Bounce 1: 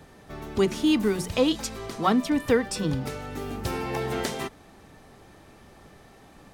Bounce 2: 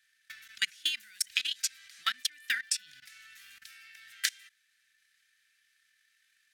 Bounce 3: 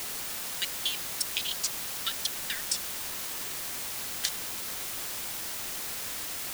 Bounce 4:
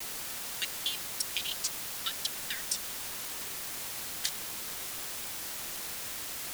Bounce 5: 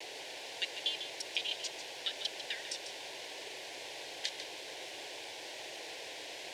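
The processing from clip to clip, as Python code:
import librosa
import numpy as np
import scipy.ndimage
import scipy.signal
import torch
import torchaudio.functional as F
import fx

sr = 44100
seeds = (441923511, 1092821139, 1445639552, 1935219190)

y1 = scipy.signal.sosfilt(scipy.signal.ellip(4, 1.0, 40, 1600.0, 'highpass', fs=sr, output='sos'), x)
y1 = fx.level_steps(y1, sr, step_db=18)
y1 = fx.transient(y1, sr, attack_db=11, sustain_db=-1)
y2 = fx.band_shelf(y1, sr, hz=1500.0, db=-8.0, octaves=1.7)
y2 = fx.quant_dither(y2, sr, seeds[0], bits=6, dither='triangular')
y3 = fx.vibrato(y2, sr, rate_hz=1.2, depth_cents=54.0)
y3 = F.gain(torch.from_numpy(y3), -2.5).numpy()
y4 = fx.bandpass_edges(y3, sr, low_hz=260.0, high_hz=3100.0)
y4 = fx.fixed_phaser(y4, sr, hz=520.0, stages=4)
y4 = y4 + 10.0 ** (-9.5 / 20.0) * np.pad(y4, (int(146 * sr / 1000.0), 0))[:len(y4)]
y4 = F.gain(torch.from_numpy(y4), 4.5).numpy()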